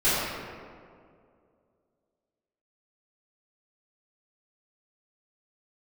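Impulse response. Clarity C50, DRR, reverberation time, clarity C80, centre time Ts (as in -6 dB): -3.5 dB, -15.0 dB, 2.3 s, -1.0 dB, 136 ms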